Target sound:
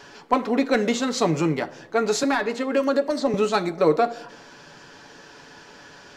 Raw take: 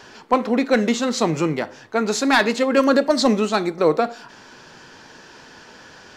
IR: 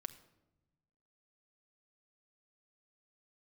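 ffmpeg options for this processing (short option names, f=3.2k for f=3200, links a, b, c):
-filter_complex "[0:a]asettb=1/sr,asplit=3[a][b][c];[a]atrim=end=2.234[d];[b]atrim=start=2.23:end=3.34,asetpts=PTS-STARTPTS,afade=t=in:d=0.004:c=qsin,afade=t=out:st=1.106:d=0.004:c=qsin,acrossover=split=200|2100[e][f][g];[e]acompressor=threshold=-40dB:ratio=4[h];[f]acompressor=threshold=-19dB:ratio=4[i];[g]acompressor=threshold=-36dB:ratio=4[j];[h][i][j]amix=inputs=3:normalize=0[k];[c]atrim=start=3.336[l];[d][k]acrossfade=d=0.004:c1=hsin:c2=qsin[m];[m][l]acrossfade=d=0.004:c1=qsin:c2=hsin,asplit=2[n][o];[o]equalizer=f=570:w=0.99:g=9.5[p];[1:a]atrim=start_sample=2205,adelay=7[q];[p][q]afir=irnorm=-1:irlink=0,volume=-7.5dB[r];[n][r]amix=inputs=2:normalize=0,volume=-2.5dB"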